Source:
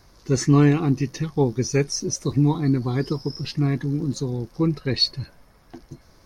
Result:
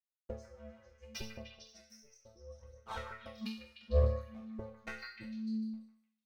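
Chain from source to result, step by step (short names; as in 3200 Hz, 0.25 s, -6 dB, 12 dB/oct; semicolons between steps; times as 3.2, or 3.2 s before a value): spectral noise reduction 25 dB; in parallel at +2 dB: compressor 10:1, threshold -27 dBFS, peak gain reduction 15 dB; on the sum: backlash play -28.5 dBFS; flipped gate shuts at -19 dBFS, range -34 dB; resonator bank A3 sus4, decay 0.51 s; ring modulator 220 Hz; phaser 0.72 Hz, delay 4.8 ms, feedback 42%; delay with a stepping band-pass 0.15 s, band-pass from 1600 Hz, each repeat 0.7 oct, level -3 dB; Doppler distortion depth 0.15 ms; gain +16.5 dB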